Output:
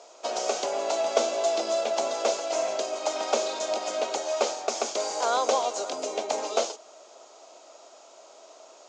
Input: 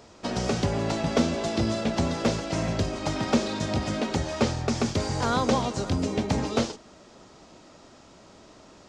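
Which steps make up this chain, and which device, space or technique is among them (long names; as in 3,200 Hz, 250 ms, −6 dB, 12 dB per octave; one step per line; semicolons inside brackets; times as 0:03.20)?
phone speaker on a table (loudspeaker in its box 430–8,900 Hz, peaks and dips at 660 Hz +8 dB, 1,800 Hz −8 dB, 6,700 Hz +8 dB)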